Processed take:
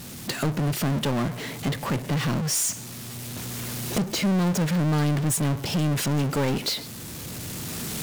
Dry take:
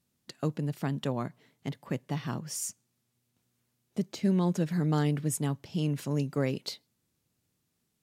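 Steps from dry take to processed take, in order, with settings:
camcorder AGC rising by 20 dB per second
power curve on the samples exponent 0.35
level −4 dB

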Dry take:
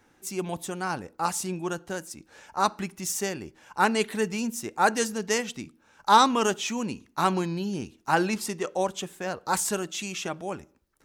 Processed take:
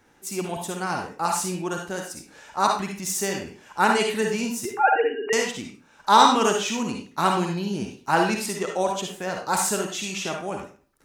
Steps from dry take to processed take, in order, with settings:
0:04.65–0:05.33: three sine waves on the formant tracks
on a send: low-shelf EQ 200 Hz −11.5 dB + convolution reverb RT60 0.40 s, pre-delay 46 ms, DRR 1.5 dB
on the sum: level +1.5 dB

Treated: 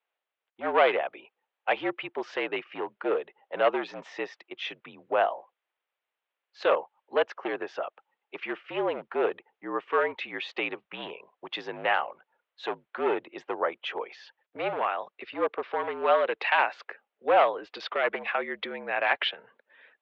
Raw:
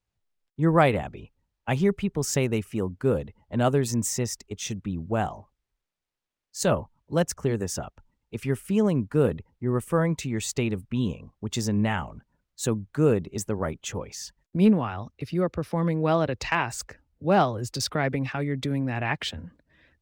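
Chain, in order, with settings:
in parallel at −1 dB: brickwall limiter −15.5 dBFS, peak gain reduction 7.5 dB
on the sum: asymmetric clip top −16 dBFS
single-sideband voice off tune −54 Hz 540–3,400 Hz

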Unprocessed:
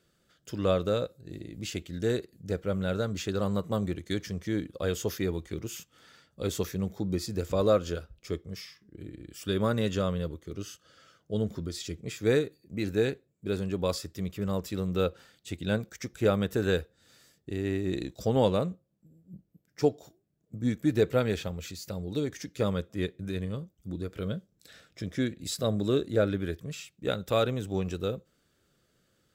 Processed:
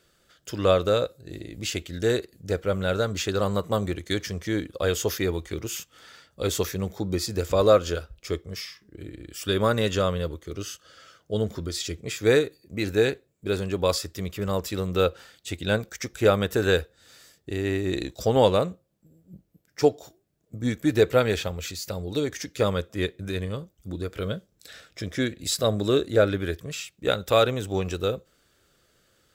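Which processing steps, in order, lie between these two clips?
parametric band 180 Hz −8 dB 1.8 octaves
level +8 dB

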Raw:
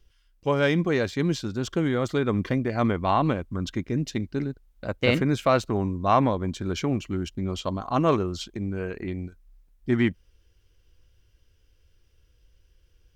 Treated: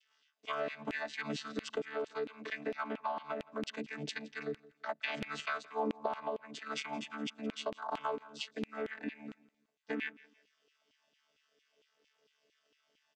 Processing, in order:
channel vocoder with a chord as carrier bare fifth, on D3
auto-filter high-pass saw down 4.4 Hz 320–2,900 Hz
tilt shelving filter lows −4.5 dB, about 1,400 Hz
downward compressor 12 to 1, threshold −40 dBFS, peak gain reduction 20 dB
repeating echo 169 ms, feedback 30%, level −21.5 dB
0:05.63–0:06.06: dynamic equaliser 480 Hz, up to +7 dB, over −58 dBFS, Q 0.85
level +6 dB

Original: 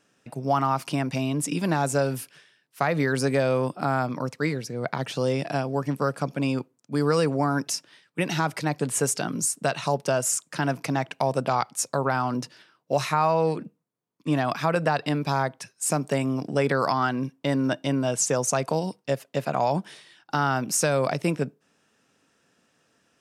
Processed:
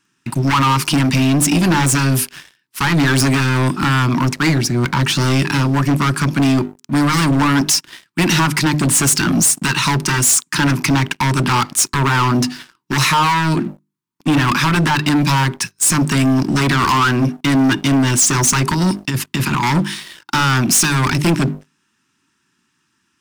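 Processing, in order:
0:18.74–0:19.63: compressor whose output falls as the input rises −29 dBFS, ratio −1
mains-hum notches 50/100/150/200/250/300/350/400 Hz
hard clipping −22 dBFS, distortion −9 dB
elliptic band-stop filter 370–910 Hz
leveller curve on the samples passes 3
level +8.5 dB

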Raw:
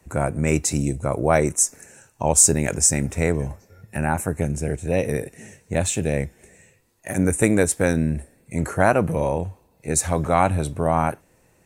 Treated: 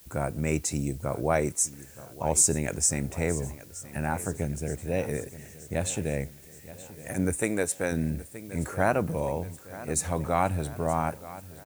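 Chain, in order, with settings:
repeating echo 924 ms, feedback 57%, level −17 dB
background noise blue −47 dBFS
0:07.40–0:07.92: low-shelf EQ 200 Hz −10.5 dB
level −7 dB

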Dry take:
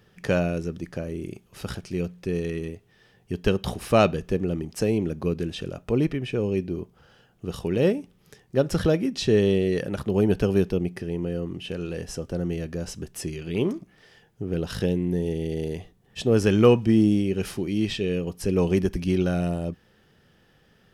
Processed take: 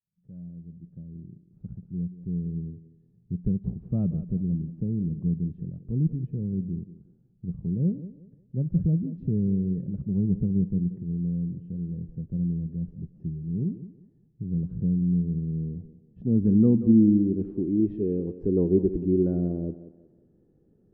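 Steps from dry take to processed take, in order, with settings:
fade in at the beginning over 2.85 s
feedback echo with a high-pass in the loop 181 ms, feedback 37%, high-pass 210 Hz, level −12 dB
low-pass filter sweep 170 Hz → 340 Hz, 0:15.48–0:18.06
level −4 dB

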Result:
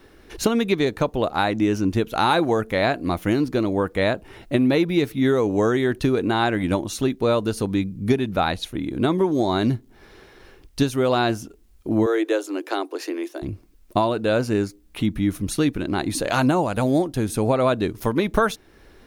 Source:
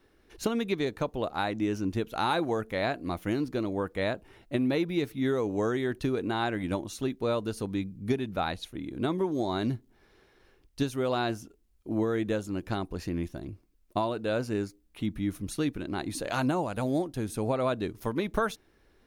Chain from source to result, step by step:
in parallel at +0.5 dB: downward compressor, threshold −44 dBFS, peak gain reduction 20 dB
0:12.06–0:13.42: on the sum: Butterworth high-pass 290 Hz 96 dB per octave
level +7.5 dB

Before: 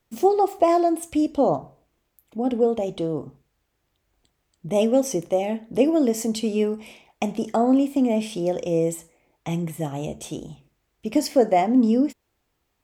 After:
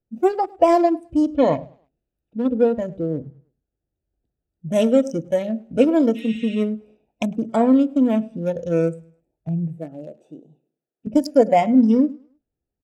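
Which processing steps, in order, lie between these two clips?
adaptive Wiener filter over 41 samples
0:06.18–0:06.53: healed spectral selection 1,300–8,700 Hz after
0:09.77–0:11.07: high-pass filter 350 Hz 12 dB per octave
repeating echo 104 ms, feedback 41%, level −18 dB
noise reduction from a noise print of the clip's start 11 dB
0:01.35–0:02.47: parametric band 3,200 Hz +9 dB 1.3 octaves
level +4 dB

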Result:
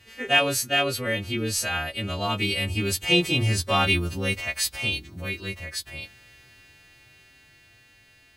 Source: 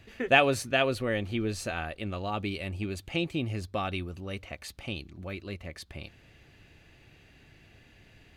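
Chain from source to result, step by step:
every partial snapped to a pitch grid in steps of 2 semitones
source passing by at 0:03.78, 5 m/s, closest 4.9 metres
in parallel at −5.5 dB: hard clipping −31.5 dBFS, distortion −9 dB
on the sum: harmonic and percussive parts rebalanced percussive −9 dB
level +8.5 dB

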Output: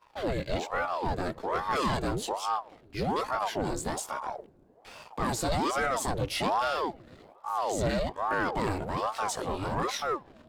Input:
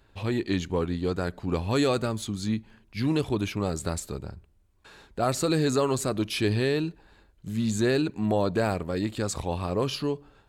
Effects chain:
multi-voice chorus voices 4, 0.66 Hz, delay 18 ms, depth 1.6 ms
in parallel at +2 dB: downward compressor 4 to 1, threshold −44 dBFS, peak gain reduction 19 dB
on the sum: leveller curve on the samples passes 2
on a send at −24 dB: head-to-tape spacing loss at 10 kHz 36 dB + convolution reverb RT60 3.4 s, pre-delay 113 ms
on the sum: ring modulator whose carrier an LFO sweeps 600 Hz, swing 70%, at 1.2 Hz
level −5 dB

